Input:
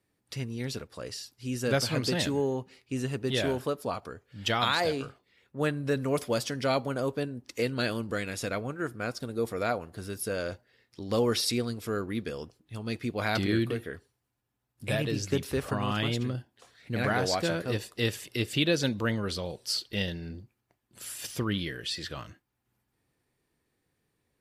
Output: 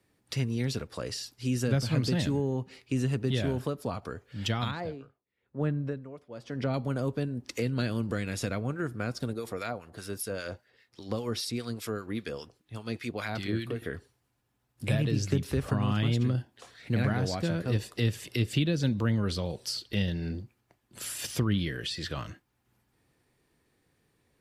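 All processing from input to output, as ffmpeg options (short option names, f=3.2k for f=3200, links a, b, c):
-filter_complex "[0:a]asettb=1/sr,asplit=3[a][b][c];[a]atrim=end=4.714[d];[b]atrim=start=4.71:end=6.74,asetpts=PTS-STARTPTS,afade=t=in:d=0.004:c=qsin,afade=t=out:st=2.026:d=0.004:c=qsin,lowpass=f=1.2k:p=1,aeval=exprs='val(0)*pow(10,-24*(0.5-0.5*cos(2*PI*1*n/s))/20)':c=same[e];[c]atrim=start=6.736[f];[d][e]acrossfade=d=0.004:c1=hsin:c2=qsin[g];[g][f]acrossfade=d=0.004:c1=qsin:c2=hsin,asettb=1/sr,asplit=3[h][i][j];[h]atrim=end=9.334[k];[i]atrim=start=9.33:end=13.82,asetpts=PTS-STARTPTS,afade=t=in:d=0.004:c=qsin,afade=t=out:st=4.486:d=0.004:c=qsin,lowshelf=f=480:g=-6,acrossover=split=1200[l][m];[l]aeval=exprs='val(0)*(1-0.7/2+0.7/2*cos(2*PI*5*n/s))':c=same[n];[m]aeval=exprs='val(0)*(1-0.7/2-0.7/2*cos(2*PI*5*n/s))':c=same[o];[n][o]amix=inputs=2:normalize=0[p];[j]atrim=start=13.816[q];[k][p]acrossfade=d=0.004:c1=hsin:c2=qsin[r];[r][q]acrossfade=d=0.004:c1=qsin:c2=hsin,highshelf=f=12k:g=-5.5,acrossover=split=230[s][t];[t]acompressor=threshold=-39dB:ratio=5[u];[s][u]amix=inputs=2:normalize=0,volume=6dB"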